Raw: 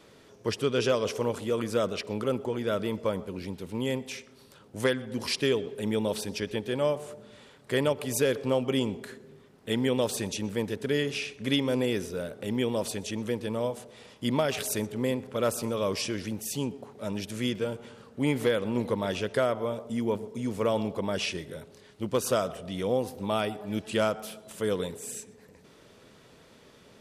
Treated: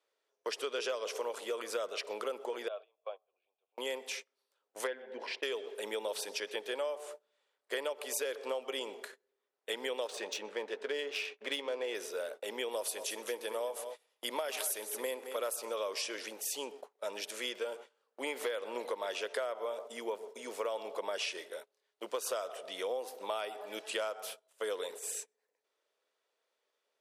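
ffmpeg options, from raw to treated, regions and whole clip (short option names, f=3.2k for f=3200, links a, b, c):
-filter_complex "[0:a]asettb=1/sr,asplit=3[a][b][c];[a]atrim=end=2.684[d];[b]atrim=start=2.68:end=3.78,asetpts=PTS-STARTPTS,afade=t=in:d=0.004:c=qsin,afade=t=out:st=1.096:d=0.004:c=qsin,asplit=3[e][f][g];[e]bandpass=f=730:t=q:w=8,volume=0dB[h];[f]bandpass=f=1.09k:t=q:w=8,volume=-6dB[i];[g]bandpass=f=2.44k:t=q:w=8,volume=-9dB[j];[h][i][j]amix=inputs=3:normalize=0,highpass=f=260:w=0.5412,highpass=f=260:w=1.3066,equalizer=f=1.2k:t=q:w=4:g=-5,equalizer=f=1.7k:t=q:w=4:g=4,equalizer=f=3.5k:t=q:w=4:g=8,lowpass=f=4.4k:w=0.5412,lowpass=f=4.4k:w=1.3066[k];[c]atrim=start=3.776[l];[d][k]acrossfade=d=0.004:c1=hsin:c2=qsin[m];[m][l]acrossfade=d=0.004:c1=qsin:c2=hsin,asettb=1/sr,asplit=3[n][o][p];[n]atrim=end=4.874[q];[o]atrim=start=4.87:end=5.43,asetpts=PTS-STARTPTS,afade=t=in:d=0.004:c=qsin,afade=t=out:st=0.556:d=0.004:c=qsin,lowpass=2.1k,equalizer=f=1.2k:w=5.1:g=-13[r];[p]atrim=start=5.426[s];[q][r]acrossfade=d=0.004:c1=hsin:c2=qsin[t];[t][s]acrossfade=d=0.004:c1=qsin:c2=hsin,asettb=1/sr,asplit=3[u][v][w];[u]atrim=end=10.074[x];[v]atrim=start=10.07:end=11.95,asetpts=PTS-STARTPTS,afade=t=in:d=0.004:c=qsin,afade=t=out:st=1.876:d=0.004:c=qsin,adynamicsmooth=sensitivity=5:basefreq=3.2k,asplit=2[y][z];[z]adelay=14,volume=-12dB[aa];[y][aa]amix=inputs=2:normalize=0,atrim=end_sample=82908[ab];[w]atrim=start=11.946[ac];[x][ab]acrossfade=d=0.004:c1=hsin:c2=qsin[ad];[ad][ac]acrossfade=d=0.004:c1=qsin:c2=hsin,asettb=1/sr,asplit=3[ae][af][ag];[ae]atrim=end=12.714[ah];[af]atrim=start=12.71:end=15.56,asetpts=PTS-STARTPTS,afade=t=in:d=0.004:c=qsin,afade=t=out:st=2.846:d=0.004:c=qsin,equalizer=f=11k:t=o:w=0.44:g=11,aecho=1:1:220:0.224,atrim=end_sample=125685[ai];[ag]atrim=start=15.556[aj];[ah][ai]acrossfade=d=0.004:c1=hsin:c2=qsin[ak];[ak][aj]acrossfade=d=0.004:c1=qsin:c2=hsin,agate=range=-25dB:threshold=-41dB:ratio=16:detection=peak,highpass=f=460:w=0.5412,highpass=f=460:w=1.3066,acompressor=threshold=-33dB:ratio=6"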